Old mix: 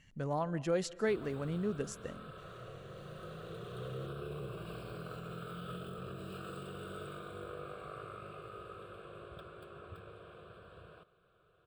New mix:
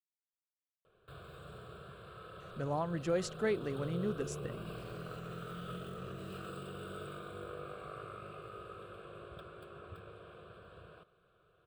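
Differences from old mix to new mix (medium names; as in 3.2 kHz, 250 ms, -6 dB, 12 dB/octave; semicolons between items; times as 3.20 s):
speech: entry +2.40 s; reverb: off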